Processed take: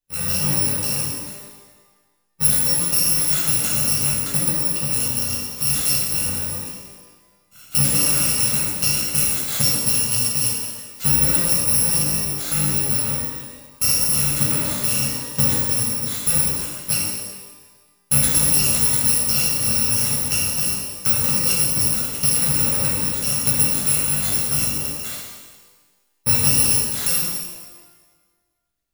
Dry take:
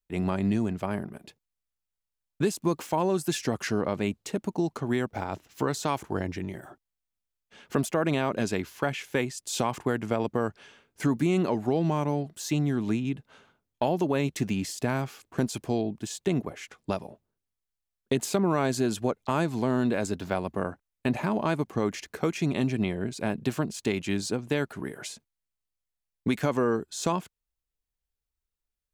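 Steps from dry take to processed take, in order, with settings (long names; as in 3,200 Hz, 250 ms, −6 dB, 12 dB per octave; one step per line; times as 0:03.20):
samples in bit-reversed order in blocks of 128 samples
harmonic and percussive parts rebalanced percussive +9 dB
reverb with rising layers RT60 1.3 s, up +12 semitones, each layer −8 dB, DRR −5.5 dB
level −4 dB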